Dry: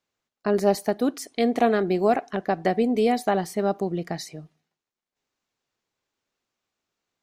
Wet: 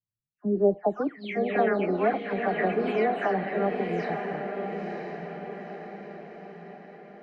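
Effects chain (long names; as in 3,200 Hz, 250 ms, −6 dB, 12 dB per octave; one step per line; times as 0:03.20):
every frequency bin delayed by itself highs early, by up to 311 ms
low-pass filter sweep 120 Hz → 2,200 Hz, 0:00.23–0:01.19
feedback delay with all-pass diffusion 975 ms, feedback 51%, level −5 dB
level −4.5 dB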